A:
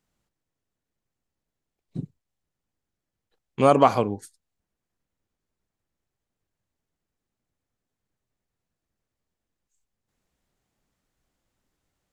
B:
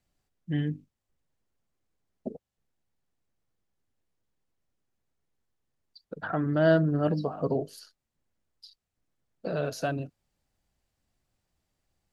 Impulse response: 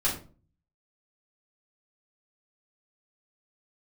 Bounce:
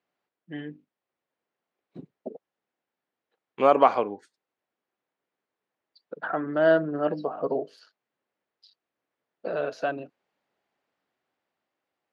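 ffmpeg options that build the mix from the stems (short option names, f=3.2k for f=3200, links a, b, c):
-filter_complex "[0:a]volume=-3dB[a];[1:a]volume=0dB[b];[a][b]amix=inputs=2:normalize=0,highpass=370,lowpass=2.8k,dynaudnorm=f=210:g=11:m=3.5dB"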